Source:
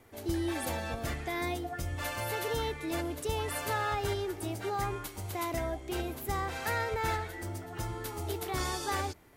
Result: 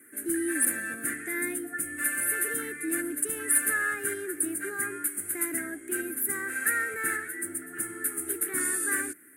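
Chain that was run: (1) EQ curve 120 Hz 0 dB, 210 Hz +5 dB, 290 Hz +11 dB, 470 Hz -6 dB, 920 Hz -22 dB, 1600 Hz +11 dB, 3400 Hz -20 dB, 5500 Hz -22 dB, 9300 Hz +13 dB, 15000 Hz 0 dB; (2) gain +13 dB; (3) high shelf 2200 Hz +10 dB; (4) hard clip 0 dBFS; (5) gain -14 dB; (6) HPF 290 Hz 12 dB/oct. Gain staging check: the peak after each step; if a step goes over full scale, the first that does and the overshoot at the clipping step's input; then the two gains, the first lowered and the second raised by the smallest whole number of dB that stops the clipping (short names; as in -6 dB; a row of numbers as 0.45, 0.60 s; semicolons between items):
-15.0, -2.0, +6.5, 0.0, -14.0, -13.0 dBFS; step 3, 6.5 dB; step 2 +6 dB, step 5 -7 dB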